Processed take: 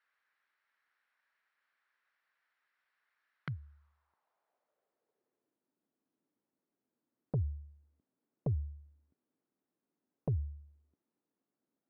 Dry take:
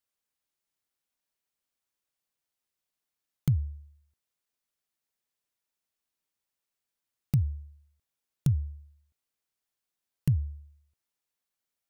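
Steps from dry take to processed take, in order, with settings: HPF 91 Hz 12 dB/oct; high shelf 3400 Hz -11.5 dB; band-pass sweep 1700 Hz -> 270 Hz, 3.42–5.68; sine folder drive 8 dB, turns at -22.5 dBFS; limiter -34 dBFS, peak gain reduction 11.5 dB; rippled Chebyshev low-pass 5700 Hz, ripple 3 dB; gain +9.5 dB

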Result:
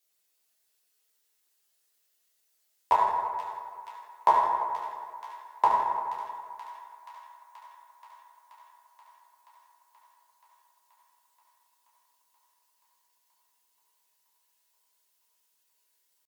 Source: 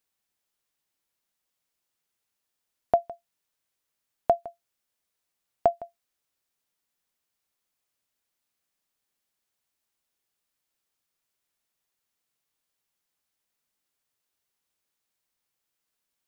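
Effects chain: HPF 340 Hz 12 dB/oct; bell 740 Hz -11 dB 2 oct; notch 1700 Hz, Q 22; comb 6.6 ms, depth 59%; dynamic EQ 510 Hz, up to +6 dB, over -45 dBFS, Q 0.95; pitch shift +6 st; thin delay 0.479 s, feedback 77%, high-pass 1900 Hz, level -10 dB; reverb RT60 2.2 s, pre-delay 5 ms, DRR -6 dB; gain +6 dB

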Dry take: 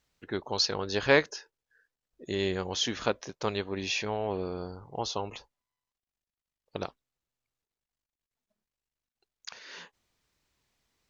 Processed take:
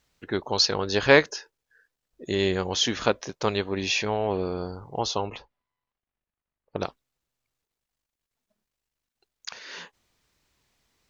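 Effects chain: 5.26–6.79 LPF 3500 Hz -> 1700 Hz 12 dB/oct; gain +5.5 dB

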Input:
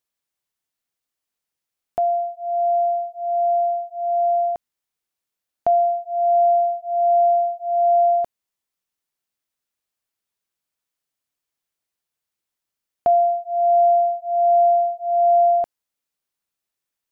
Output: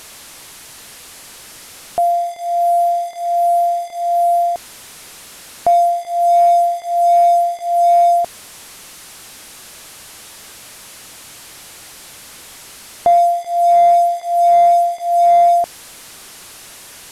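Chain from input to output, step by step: delta modulation 64 kbps, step -35.5 dBFS; gain +5 dB

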